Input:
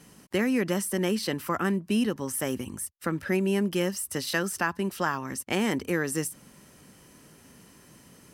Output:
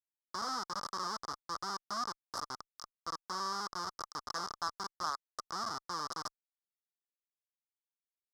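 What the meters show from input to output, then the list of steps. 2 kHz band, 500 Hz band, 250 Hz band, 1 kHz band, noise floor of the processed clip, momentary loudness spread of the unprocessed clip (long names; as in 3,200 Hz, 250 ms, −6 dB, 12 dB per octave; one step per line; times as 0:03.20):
−15.0 dB, −21.0 dB, −25.5 dB, −2.0 dB, below −85 dBFS, 6 LU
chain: bit-depth reduction 12 bits, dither none
comparator with hysteresis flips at −24 dBFS
pair of resonant band-passes 2,500 Hz, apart 2.1 octaves
level +10.5 dB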